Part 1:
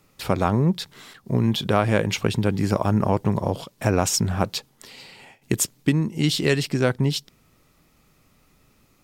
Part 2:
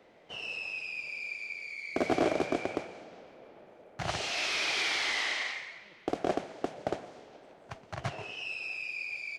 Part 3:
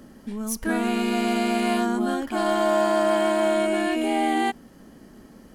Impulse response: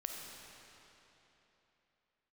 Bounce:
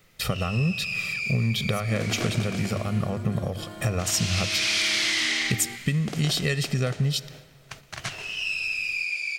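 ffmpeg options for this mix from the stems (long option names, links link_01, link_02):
-filter_complex "[0:a]aecho=1:1:1.6:0.82,volume=3dB,asplit=2[link_01][link_02];[link_02]volume=-21dB[link_03];[1:a]tiltshelf=frequency=750:gain=-6,crystalizer=i=1:c=0,volume=3dB,asplit=2[link_04][link_05];[link_05]volume=-12.5dB[link_06];[2:a]acompressor=threshold=-21dB:ratio=6,adelay=1250,volume=-11.5dB[link_07];[link_01][link_04]amix=inputs=2:normalize=0,acompressor=threshold=-22dB:ratio=6,volume=0dB[link_08];[3:a]atrim=start_sample=2205[link_09];[link_03][link_06]amix=inputs=2:normalize=0[link_10];[link_10][link_09]afir=irnorm=-1:irlink=0[link_11];[link_07][link_08][link_11]amix=inputs=3:normalize=0,bandreject=frequency=50:width_type=h:width=6,bandreject=frequency=100:width_type=h:width=6,agate=range=-6dB:threshold=-42dB:ratio=16:detection=peak,equalizer=frequency=750:width_type=o:width=1.4:gain=-9"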